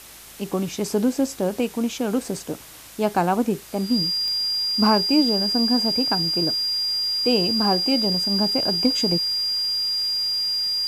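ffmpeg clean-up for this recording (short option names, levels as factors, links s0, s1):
-af "adeclick=t=4,bandreject=f=54:t=h:w=4,bandreject=f=108:t=h:w=4,bandreject=f=162:t=h:w=4,bandreject=f=216:t=h:w=4,bandreject=f=270:t=h:w=4,bandreject=f=324:t=h:w=4,bandreject=f=4800:w=30,afwtdn=0.0079"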